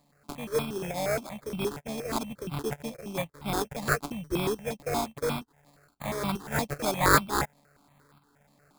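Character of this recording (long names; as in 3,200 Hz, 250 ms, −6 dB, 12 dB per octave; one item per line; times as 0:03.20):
a buzz of ramps at a fixed pitch in blocks of 16 samples
tremolo saw up 1.1 Hz, depth 55%
aliases and images of a low sample rate 2,900 Hz, jitter 0%
notches that jump at a steady rate 8.5 Hz 390–1,800 Hz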